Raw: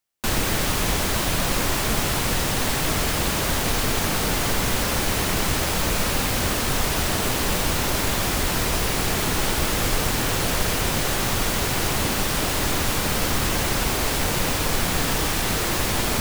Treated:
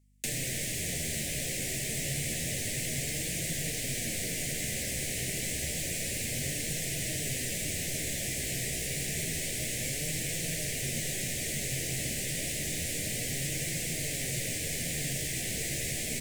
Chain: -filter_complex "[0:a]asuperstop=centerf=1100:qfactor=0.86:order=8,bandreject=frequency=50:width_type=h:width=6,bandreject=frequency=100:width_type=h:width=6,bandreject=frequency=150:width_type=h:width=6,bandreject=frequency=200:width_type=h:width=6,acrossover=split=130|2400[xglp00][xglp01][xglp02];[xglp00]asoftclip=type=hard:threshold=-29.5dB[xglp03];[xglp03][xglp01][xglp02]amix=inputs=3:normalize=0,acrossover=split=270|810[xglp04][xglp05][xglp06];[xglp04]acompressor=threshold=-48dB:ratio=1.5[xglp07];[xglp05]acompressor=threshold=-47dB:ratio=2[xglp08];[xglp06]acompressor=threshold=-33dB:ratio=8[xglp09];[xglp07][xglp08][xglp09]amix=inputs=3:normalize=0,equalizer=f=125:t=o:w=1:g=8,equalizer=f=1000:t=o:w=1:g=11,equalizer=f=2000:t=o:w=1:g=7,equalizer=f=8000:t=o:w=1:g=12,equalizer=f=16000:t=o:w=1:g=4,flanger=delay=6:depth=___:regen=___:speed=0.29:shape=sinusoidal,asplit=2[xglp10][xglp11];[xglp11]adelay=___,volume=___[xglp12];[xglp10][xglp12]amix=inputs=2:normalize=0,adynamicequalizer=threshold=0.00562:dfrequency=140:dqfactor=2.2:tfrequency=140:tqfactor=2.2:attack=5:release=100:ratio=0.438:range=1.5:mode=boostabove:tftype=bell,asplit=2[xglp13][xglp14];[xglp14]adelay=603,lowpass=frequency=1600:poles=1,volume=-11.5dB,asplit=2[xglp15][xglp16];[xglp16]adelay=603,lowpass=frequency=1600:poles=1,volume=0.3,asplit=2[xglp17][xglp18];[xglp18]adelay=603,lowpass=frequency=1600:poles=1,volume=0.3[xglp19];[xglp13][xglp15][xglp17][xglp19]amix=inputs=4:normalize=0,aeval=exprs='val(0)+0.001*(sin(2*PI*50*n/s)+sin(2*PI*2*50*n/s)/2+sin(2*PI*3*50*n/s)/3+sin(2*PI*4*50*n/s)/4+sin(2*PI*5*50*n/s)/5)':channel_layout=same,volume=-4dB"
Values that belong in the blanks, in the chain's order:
9.7, 55, 13, -11.5dB